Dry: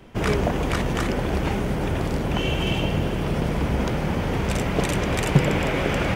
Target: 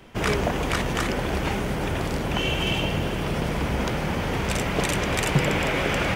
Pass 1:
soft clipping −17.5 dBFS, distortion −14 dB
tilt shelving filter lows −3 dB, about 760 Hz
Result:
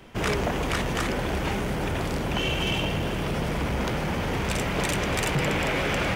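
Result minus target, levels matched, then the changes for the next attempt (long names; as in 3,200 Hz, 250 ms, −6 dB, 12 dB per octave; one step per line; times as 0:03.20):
soft clipping: distortion +12 dB
change: soft clipping −6.5 dBFS, distortion −25 dB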